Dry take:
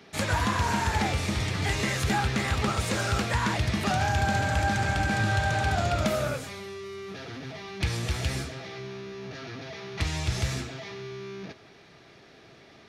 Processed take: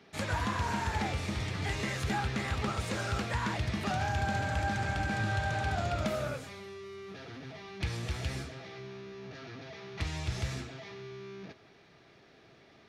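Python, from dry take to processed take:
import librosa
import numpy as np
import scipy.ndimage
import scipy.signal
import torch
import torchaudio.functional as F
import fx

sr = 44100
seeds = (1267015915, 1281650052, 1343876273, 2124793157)

y = fx.high_shelf(x, sr, hz=6200.0, db=-6.0)
y = y * librosa.db_to_amplitude(-6.0)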